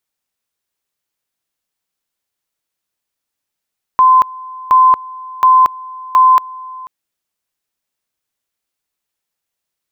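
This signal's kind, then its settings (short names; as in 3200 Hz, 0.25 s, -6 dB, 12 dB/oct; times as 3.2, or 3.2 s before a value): two-level tone 1030 Hz -4.5 dBFS, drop 22 dB, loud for 0.23 s, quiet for 0.49 s, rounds 4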